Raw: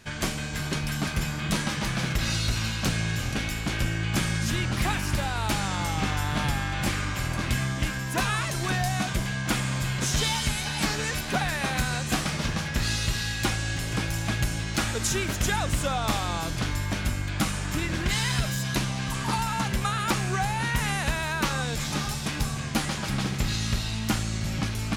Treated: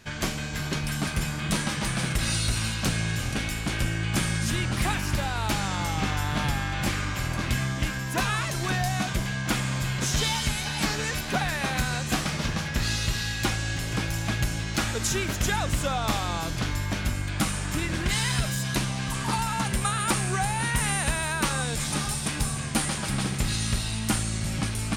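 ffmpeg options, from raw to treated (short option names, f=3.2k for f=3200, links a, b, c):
-af "asetnsamples=n=441:p=0,asendcmd='0.84 equalizer g 7;1.85 equalizer g 14;2.74 equalizer g 6.5;4.94 equalizer g -1.5;17.15 equalizer g 6.5;19.65 equalizer g 14.5',equalizer=f=9k:t=o:w=0.24:g=-3.5"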